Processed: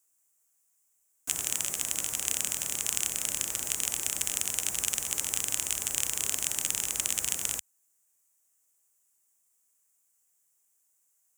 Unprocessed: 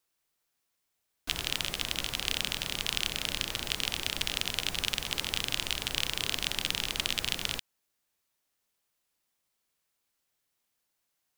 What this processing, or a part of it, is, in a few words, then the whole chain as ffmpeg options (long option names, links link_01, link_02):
budget condenser microphone: -af "highpass=110,highshelf=frequency=5600:width_type=q:width=3:gain=10.5,asubboost=boost=4:cutoff=67,volume=-3dB"